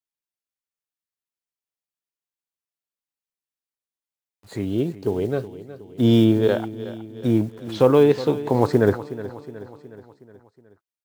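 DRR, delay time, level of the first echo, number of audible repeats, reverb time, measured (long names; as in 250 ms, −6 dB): no reverb audible, 367 ms, −15.0 dB, 4, no reverb audible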